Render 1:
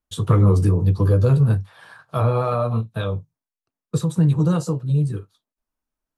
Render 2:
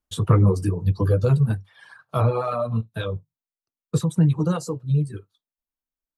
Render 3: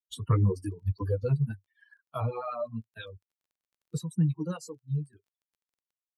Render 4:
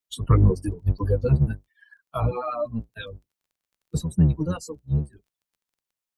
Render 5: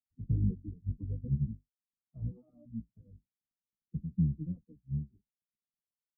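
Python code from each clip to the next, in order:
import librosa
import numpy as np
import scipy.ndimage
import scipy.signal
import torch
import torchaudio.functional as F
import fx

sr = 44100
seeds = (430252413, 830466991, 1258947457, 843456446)

y1 = fx.dereverb_blind(x, sr, rt60_s=2.0)
y2 = fx.bin_expand(y1, sr, power=2.0)
y2 = fx.dmg_crackle(y2, sr, seeds[0], per_s=18.0, level_db=-54.0)
y2 = y2 * 10.0 ** (-5.5 / 20.0)
y3 = fx.octave_divider(y2, sr, octaves=1, level_db=-5.0)
y3 = y3 * 10.0 ** (6.0 / 20.0)
y4 = fx.ladder_lowpass(y3, sr, hz=260.0, resonance_pct=45)
y4 = y4 * 10.0 ** (-5.5 / 20.0)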